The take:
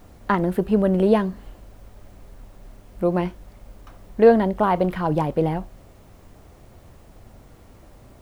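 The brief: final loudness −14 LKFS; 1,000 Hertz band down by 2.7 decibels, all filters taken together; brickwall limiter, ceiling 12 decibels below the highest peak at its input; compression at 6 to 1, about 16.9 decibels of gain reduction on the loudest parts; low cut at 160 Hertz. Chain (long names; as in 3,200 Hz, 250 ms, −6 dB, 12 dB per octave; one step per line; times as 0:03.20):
high-pass filter 160 Hz
parametric band 1,000 Hz −3.5 dB
downward compressor 6 to 1, threshold −28 dBFS
level +21.5 dB
brickwall limiter −3.5 dBFS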